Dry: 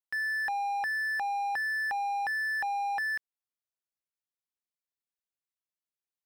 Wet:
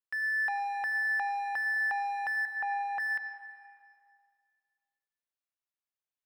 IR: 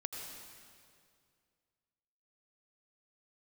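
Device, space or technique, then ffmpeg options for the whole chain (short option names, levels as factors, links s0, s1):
filtered reverb send: -filter_complex "[0:a]asettb=1/sr,asplit=3[s0][s1][s2];[s0]atrim=end=2.454[s3];[s1]atrim=start=2.45:end=3,asetpts=PTS-STARTPTS,afade=t=in:d=0.004:c=qsin,afade=t=out:st=0.546:d=0.004:c=qsin,acrossover=split=2600[s4][s5];[s5]acompressor=threshold=0.00141:ratio=4:attack=1:release=60[s6];[s4][s6]amix=inputs=2:normalize=0[s7];[s2]atrim=start=2.996[s8];[s3][s7]acrossfade=d=0.004:c1=hsin:c2=qsin[s9];[s9][s8]acrossfade=d=0.004:c1=qsin:c2=hsin,asplit=2[s10][s11];[s11]highpass=490,lowpass=3800[s12];[1:a]atrim=start_sample=2205[s13];[s12][s13]afir=irnorm=-1:irlink=0,volume=1[s14];[s10][s14]amix=inputs=2:normalize=0,volume=0.501"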